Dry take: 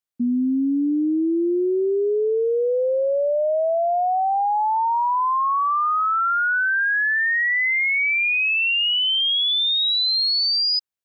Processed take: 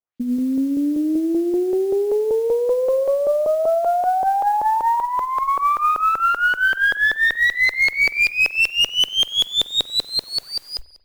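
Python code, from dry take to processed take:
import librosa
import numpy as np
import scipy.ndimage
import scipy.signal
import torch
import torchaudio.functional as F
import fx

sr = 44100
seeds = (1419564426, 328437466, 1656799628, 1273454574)

y = fx.tracing_dist(x, sr, depth_ms=0.08)
y = fx.hum_notches(y, sr, base_hz=60, count=4)
y = fx.echo_wet_highpass(y, sr, ms=110, feedback_pct=36, hz=1900.0, wet_db=-12)
y = fx.filter_lfo_lowpass(y, sr, shape='saw_up', hz=5.2, low_hz=500.0, high_hz=4300.0, q=1.5)
y = fx.over_compress(y, sr, threshold_db=-21.0, ratio=-0.5, at=(5.04, 5.47), fade=0.02)
y = fx.high_shelf(y, sr, hz=3000.0, db=6.0)
y = fx.mod_noise(y, sr, seeds[0], snr_db=30)
y = fx.cheby_harmonics(y, sr, harmonics=(2,), levels_db=(-19,), full_scale_db=-11.0)
y = fx.rev_spring(y, sr, rt60_s=1.1, pass_ms=(45,), chirp_ms=50, drr_db=17.0)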